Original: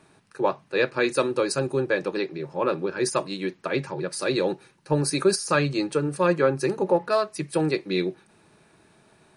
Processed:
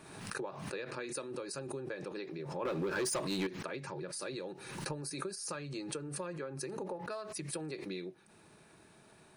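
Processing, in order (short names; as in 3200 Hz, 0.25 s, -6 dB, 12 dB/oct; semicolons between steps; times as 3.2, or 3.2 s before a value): high shelf 9300 Hz +6.5 dB; compressor 12:1, threshold -35 dBFS, peak gain reduction 20.5 dB; 2.65–3.47 sample leveller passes 3; backwards sustainer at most 46 dB/s; gain -3.5 dB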